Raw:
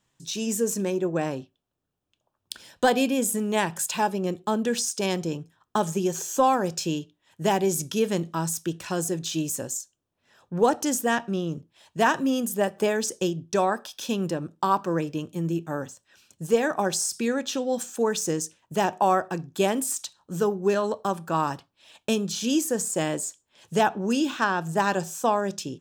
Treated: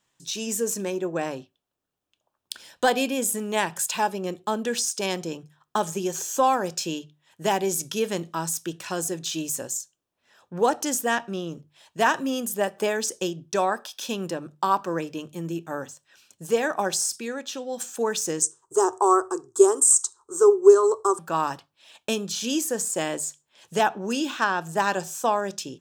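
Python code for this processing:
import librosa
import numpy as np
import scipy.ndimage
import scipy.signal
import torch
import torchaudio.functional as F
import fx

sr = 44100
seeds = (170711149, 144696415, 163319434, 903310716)

y = fx.curve_eq(x, sr, hz=(110.0, 190.0, 400.0, 580.0, 1200.0, 2200.0, 3700.0, 8200.0, 13000.0), db=(0, -27, 14, -11, 8, -25, -12, 14, -9), at=(18.42, 21.19))
y = fx.edit(y, sr, fx.clip_gain(start_s=17.16, length_s=0.64, db=-4.5), tone=tone)
y = fx.low_shelf(y, sr, hz=300.0, db=-9.0)
y = fx.hum_notches(y, sr, base_hz=50, count=3)
y = y * 10.0 ** (1.5 / 20.0)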